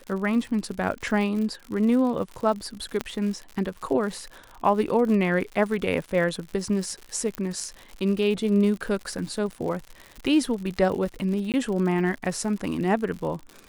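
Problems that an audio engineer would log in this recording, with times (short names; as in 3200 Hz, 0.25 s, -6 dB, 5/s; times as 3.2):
crackle 100/s -32 dBFS
3.01 pop -12 dBFS
7.35 pop -14 dBFS
11.52–11.54 gap 18 ms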